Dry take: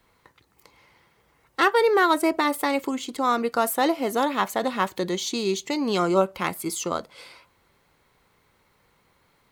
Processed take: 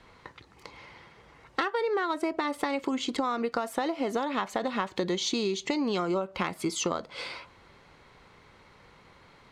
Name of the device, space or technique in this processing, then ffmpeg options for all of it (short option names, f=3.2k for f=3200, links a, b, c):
serial compression, leveller first: -af "lowpass=5.4k,acompressor=threshold=-23dB:ratio=3,acompressor=threshold=-35dB:ratio=6,volume=8.5dB"